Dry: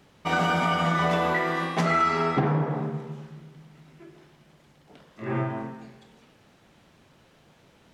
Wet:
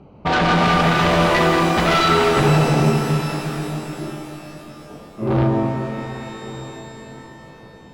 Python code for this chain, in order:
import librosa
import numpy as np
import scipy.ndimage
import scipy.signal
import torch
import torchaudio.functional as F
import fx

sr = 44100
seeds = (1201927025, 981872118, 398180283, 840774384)

p1 = fx.wiener(x, sr, points=25)
p2 = fx.fold_sine(p1, sr, drive_db=13, ceiling_db=-11.5)
p3 = p1 + (p2 * 10.0 ** (-5.5 / 20.0))
p4 = scipy.signal.sosfilt(scipy.signal.butter(2, 4600.0, 'lowpass', fs=sr, output='sos'), p3)
p5 = p4 + fx.echo_single(p4, sr, ms=1191, db=-17.5, dry=0)
y = fx.rev_shimmer(p5, sr, seeds[0], rt60_s=3.7, semitones=12, shimmer_db=-8, drr_db=4.0)